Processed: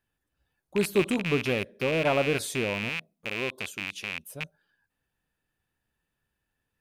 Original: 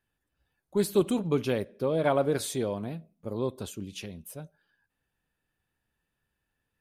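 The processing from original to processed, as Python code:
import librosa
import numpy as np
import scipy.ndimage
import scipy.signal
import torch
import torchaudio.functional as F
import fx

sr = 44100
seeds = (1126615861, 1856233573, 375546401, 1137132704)

y = fx.rattle_buzz(x, sr, strikes_db=-39.0, level_db=-19.0)
y = fx.low_shelf(y, sr, hz=270.0, db=-10.0, at=(2.89, 4.3))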